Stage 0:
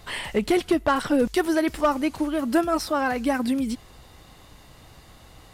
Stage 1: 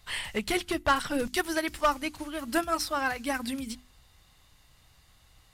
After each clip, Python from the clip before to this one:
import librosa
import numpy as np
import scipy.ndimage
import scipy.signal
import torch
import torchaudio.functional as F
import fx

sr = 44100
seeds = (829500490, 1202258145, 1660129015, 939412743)

y = fx.peak_eq(x, sr, hz=390.0, db=-11.5, octaves=2.9)
y = fx.hum_notches(y, sr, base_hz=50, count=7)
y = fx.upward_expand(y, sr, threshold_db=-49.0, expansion=1.5)
y = y * 10.0 ** (4.5 / 20.0)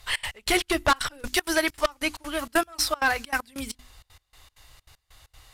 y = fx.peak_eq(x, sr, hz=190.0, db=-15.0, octaves=0.92)
y = fx.fold_sine(y, sr, drive_db=7, ceiling_db=-11.5)
y = fx.step_gate(y, sr, bpm=194, pattern='xx.x..xx.x', floor_db=-24.0, edge_ms=4.5)
y = y * 10.0 ** (-2.5 / 20.0)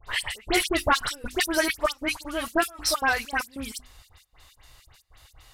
y = fx.dispersion(x, sr, late='highs', ms=73.0, hz=2300.0)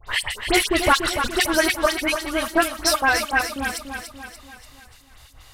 y = fx.echo_feedback(x, sr, ms=290, feedback_pct=51, wet_db=-7.5)
y = y * 10.0 ** (4.5 / 20.0)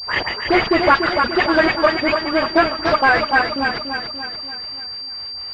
y = fx.highpass(x, sr, hz=250.0, slope=6)
y = 10.0 ** (-14.0 / 20.0) * np.tanh(y / 10.0 ** (-14.0 / 20.0))
y = fx.pwm(y, sr, carrier_hz=4700.0)
y = y * 10.0 ** (8.5 / 20.0)